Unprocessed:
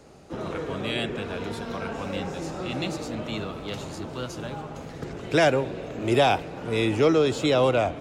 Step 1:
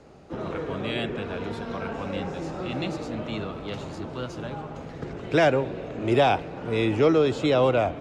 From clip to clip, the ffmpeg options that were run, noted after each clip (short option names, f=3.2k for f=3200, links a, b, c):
-af "aemphasis=mode=reproduction:type=50fm"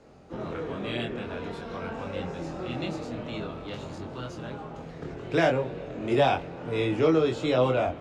-af "flanger=delay=22.5:depth=2.6:speed=0.49"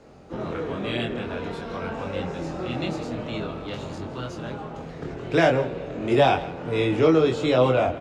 -filter_complex "[0:a]asplit=2[a][b];[b]adelay=163.3,volume=-16dB,highshelf=f=4k:g=-3.67[c];[a][c]amix=inputs=2:normalize=0,volume=4dB"